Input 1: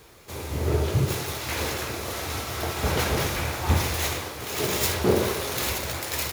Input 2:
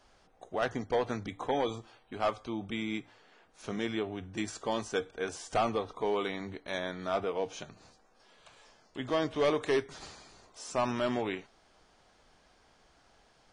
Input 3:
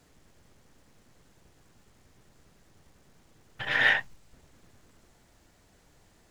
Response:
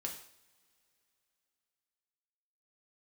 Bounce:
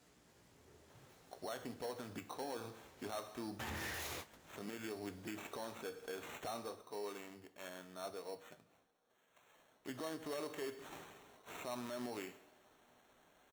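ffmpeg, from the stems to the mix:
-filter_complex "[0:a]volume=-6.5dB[a];[1:a]acrusher=samples=9:mix=1:aa=0.000001,adelay=900,volume=4dB,afade=t=out:st=6.35:d=0.4:silence=0.266073,afade=t=in:st=9.3:d=0.68:silence=0.316228,asplit=2[b][c];[c]volume=-4dB[d];[2:a]flanger=delay=16.5:depth=3:speed=0.54,aeval=exprs='(tanh(44.7*val(0)+0.35)-tanh(0.35))/44.7':c=same,volume=-1.5dB,asplit=3[e][f][g];[f]volume=-10dB[h];[g]apad=whole_len=278784[i];[a][i]sidechaingate=range=-33dB:threshold=-54dB:ratio=16:detection=peak[j];[3:a]atrim=start_sample=2205[k];[d][h]amix=inputs=2:normalize=0[l];[l][k]afir=irnorm=-1:irlink=0[m];[j][b][e][m]amix=inputs=4:normalize=0,highpass=f=150:p=1,alimiter=level_in=10.5dB:limit=-24dB:level=0:latency=1:release=217,volume=-10.5dB"

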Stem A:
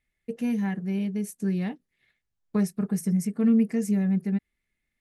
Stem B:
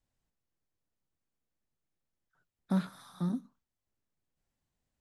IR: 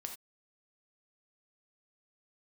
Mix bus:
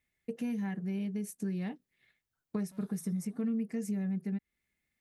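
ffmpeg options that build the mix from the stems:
-filter_complex "[0:a]highpass=60,volume=-1.5dB[a];[1:a]aemphasis=mode=production:type=75kf,asoftclip=type=tanh:threshold=-35dB,volume=-15dB[b];[a][b]amix=inputs=2:normalize=0,acompressor=threshold=-34dB:ratio=3"

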